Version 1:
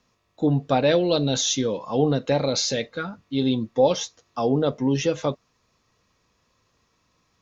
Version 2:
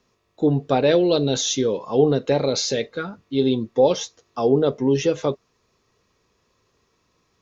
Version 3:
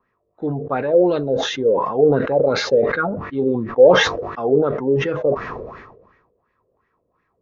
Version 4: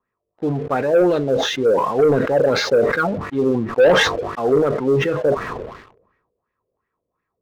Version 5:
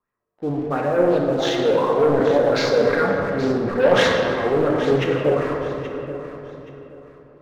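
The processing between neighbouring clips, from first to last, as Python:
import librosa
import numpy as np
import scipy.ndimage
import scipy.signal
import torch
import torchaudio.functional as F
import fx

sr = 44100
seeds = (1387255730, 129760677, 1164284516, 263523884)

y1 = fx.peak_eq(x, sr, hz=400.0, db=9.0, octaves=0.4)
y2 = fx.rider(y1, sr, range_db=5, speed_s=0.5)
y2 = fx.filter_lfo_lowpass(y2, sr, shape='sine', hz=2.8, low_hz=500.0, high_hz=1900.0, q=4.8)
y2 = fx.sustainer(y2, sr, db_per_s=50.0)
y2 = y2 * 10.0 ** (-5.0 / 20.0)
y3 = fx.leveller(y2, sr, passes=2)
y3 = y3 * 10.0 ** (-5.5 / 20.0)
y4 = fx.echo_feedback(y3, sr, ms=826, feedback_pct=27, wet_db=-13.5)
y4 = fx.room_shoebox(y4, sr, seeds[0], volume_m3=120.0, walls='hard', distance_m=0.42)
y4 = fx.doppler_dist(y4, sr, depth_ms=0.22)
y4 = y4 * 10.0 ** (-5.0 / 20.0)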